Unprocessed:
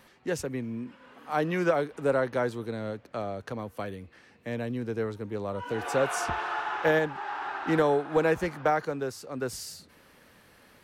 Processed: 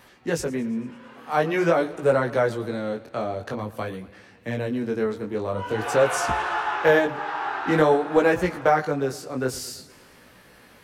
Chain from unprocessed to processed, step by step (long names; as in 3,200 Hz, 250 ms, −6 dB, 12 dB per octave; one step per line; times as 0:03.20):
chorus effect 0.48 Hz, delay 16 ms, depth 7.4 ms
feedback echo with a swinging delay time 112 ms, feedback 60%, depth 80 cents, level −19 dB
level +8.5 dB